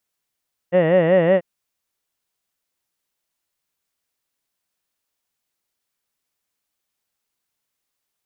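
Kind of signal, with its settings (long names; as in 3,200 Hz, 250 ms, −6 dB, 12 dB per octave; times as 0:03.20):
vowel from formants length 0.69 s, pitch 169 Hz, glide +1 semitone, vibrato depth 1.45 semitones, F1 560 Hz, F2 1,900 Hz, F3 2,800 Hz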